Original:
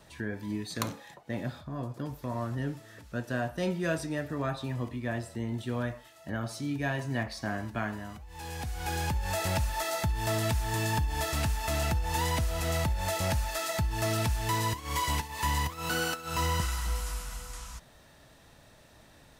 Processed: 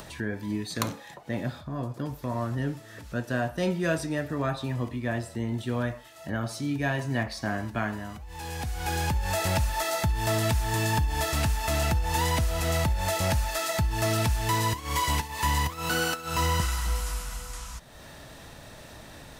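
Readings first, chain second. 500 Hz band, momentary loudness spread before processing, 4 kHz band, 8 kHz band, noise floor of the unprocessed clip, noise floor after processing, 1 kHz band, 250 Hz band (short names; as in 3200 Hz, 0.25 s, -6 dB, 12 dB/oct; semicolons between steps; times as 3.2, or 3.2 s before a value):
+3.5 dB, 9 LU, +3.5 dB, +3.5 dB, -57 dBFS, -47 dBFS, +3.5 dB, +3.5 dB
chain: upward compressor, threshold -40 dBFS; gain +3.5 dB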